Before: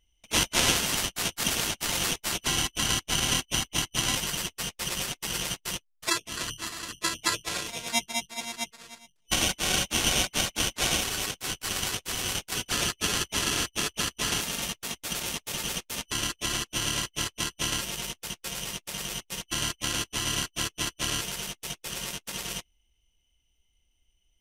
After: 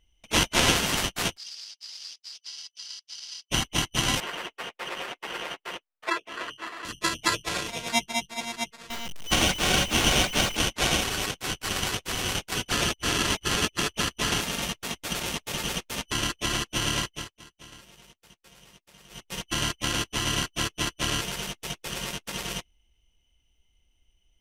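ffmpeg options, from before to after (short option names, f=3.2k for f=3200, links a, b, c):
-filter_complex "[0:a]asplit=3[a][b][c];[a]afade=t=out:st=1.36:d=0.02[d];[b]bandpass=f=4.9k:t=q:w=10,afade=t=in:st=1.36:d=0.02,afade=t=out:st=3.5:d=0.02[e];[c]afade=t=in:st=3.5:d=0.02[f];[d][e][f]amix=inputs=3:normalize=0,asettb=1/sr,asplit=3[g][h][i];[g]atrim=end=4.204[j];[h]atrim=start=4.2:end=6.85,asetpts=PTS-STARTPTS,afade=t=in:d=0.004:c=qsin,afade=t=out:st=2.646:d=0.004:c=qsin,acrossover=split=320 2900:gain=0.0708 1 0.158[k][l][m];[k][l][m]amix=inputs=3:normalize=0[n];[i]atrim=start=6.846[o];[j][n]acrossfade=d=0.004:c1=hsin:c2=qsin[p];[p][o]acrossfade=d=0.004:c1=qsin:c2=hsin,asettb=1/sr,asplit=3[q][r][s];[q]atrim=end=8.904[t];[r]atrim=start=8.9:end=10.57,asetpts=PTS-STARTPTS,afade=t=in:d=0.004:c=qsin,afade=t=out:st=1.666:d=0.004:c=qsin,aeval=exprs='val(0)+0.5*0.0266*sgn(val(0))':c=same[u];[s]atrim=start=10.566[v];[t][u]acrossfade=d=0.004:c1=hsin:c2=qsin[w];[w][v]acrossfade=d=0.004:c1=qsin:c2=hsin,asplit=5[x][y][z][aa][ab];[x]atrim=end=12.902[ac];[y]atrim=start=12.898:end=13.792,asetpts=PTS-STARTPTS,areverse[ad];[z]atrim=start=13.788:end=17.31,asetpts=PTS-STARTPTS,afade=t=out:st=3.222:d=0.3:silence=0.0944061[ae];[aa]atrim=start=17.31:end=19.09,asetpts=PTS-STARTPTS,volume=-20.5dB[af];[ab]atrim=start=19.09,asetpts=PTS-STARTPTS,afade=t=in:d=0.3:silence=0.0944061[ag];[ac][ad]acrossfade=d=0.004:c1=hsin:c2=hsin[ah];[ae][af][ag]concat=n=3:v=0:a=1[ai];[ah][ai]acrossfade=d=0.004:c1=hsin:c2=hsin,highshelf=f=4.5k:g=-8,volume=4.5dB"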